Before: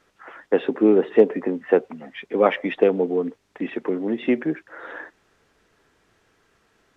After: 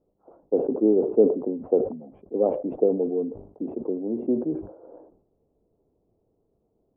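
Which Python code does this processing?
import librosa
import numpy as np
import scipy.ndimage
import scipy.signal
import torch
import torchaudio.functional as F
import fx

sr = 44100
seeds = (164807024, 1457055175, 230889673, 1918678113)

y = scipy.signal.sosfilt(scipy.signal.cheby2(4, 50, 1700.0, 'lowpass', fs=sr, output='sos'), x)
y = fx.dynamic_eq(y, sr, hz=180.0, q=3.8, threshold_db=-41.0, ratio=4.0, max_db=-4)
y = fx.sustainer(y, sr, db_per_s=96.0)
y = y * 10.0 ** (-3.5 / 20.0)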